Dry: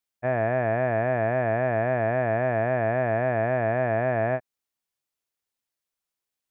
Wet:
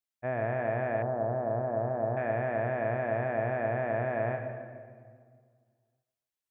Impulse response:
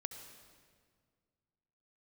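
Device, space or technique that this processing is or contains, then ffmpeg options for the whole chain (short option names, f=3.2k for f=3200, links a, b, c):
stairwell: -filter_complex "[1:a]atrim=start_sample=2205[a];[0:a][a]afir=irnorm=-1:irlink=0,asettb=1/sr,asplit=3[b][c][d];[b]atrim=end=1.024[e];[c]atrim=start=1.02:end=2.17,asetpts=PTS-STARTPTS,afade=t=in:d=0.004:c=qsin,afade=t=out:st=1.146:d=0.004:c=qsin,lowpass=f=1.2k:w=0.5412,lowpass=f=1.2k:w=1.3066[f];[d]atrim=start=2.166[g];[e][f]acrossfade=d=0.004:c1=hsin:c2=qsin[h];[h][g]acrossfade=d=0.004:c1=qsin:c2=hsin,volume=-4dB"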